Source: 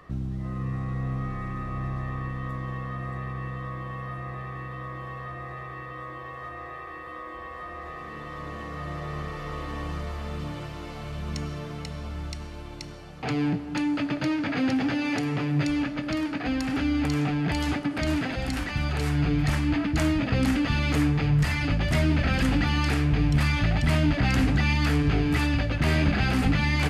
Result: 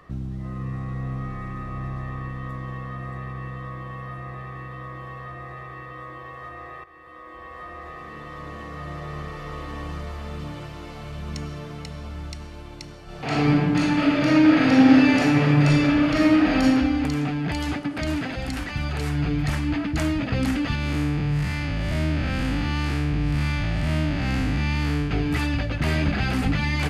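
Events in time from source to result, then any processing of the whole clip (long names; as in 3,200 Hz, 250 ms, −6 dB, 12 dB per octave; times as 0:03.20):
0:06.84–0:07.61: fade in, from −12.5 dB
0:13.04–0:16.63: thrown reverb, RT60 1.6 s, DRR −8 dB
0:20.75–0:25.11: spectrum smeared in time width 178 ms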